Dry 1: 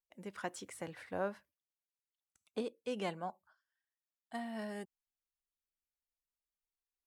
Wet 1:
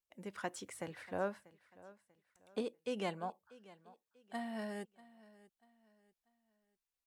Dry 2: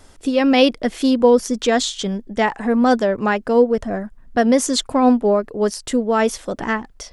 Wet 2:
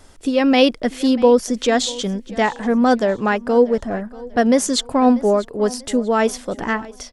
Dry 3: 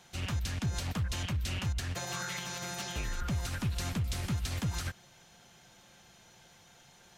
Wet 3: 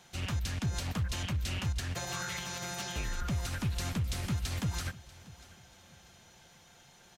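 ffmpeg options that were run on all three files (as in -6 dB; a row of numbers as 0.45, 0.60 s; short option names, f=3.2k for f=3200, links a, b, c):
-af "aecho=1:1:640|1280|1920:0.1|0.035|0.0123"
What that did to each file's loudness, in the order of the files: 0.0, 0.0, 0.0 LU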